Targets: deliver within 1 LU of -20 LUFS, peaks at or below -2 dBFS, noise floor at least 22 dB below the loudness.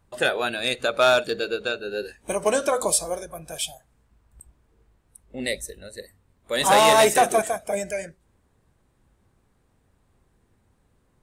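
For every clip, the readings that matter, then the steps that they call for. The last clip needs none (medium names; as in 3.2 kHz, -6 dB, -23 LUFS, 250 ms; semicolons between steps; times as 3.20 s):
loudness -22.5 LUFS; peak level -7.5 dBFS; loudness target -20.0 LUFS
-> trim +2.5 dB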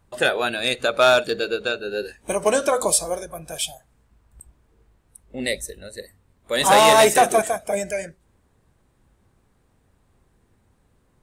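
loudness -20.0 LUFS; peak level -5.0 dBFS; noise floor -63 dBFS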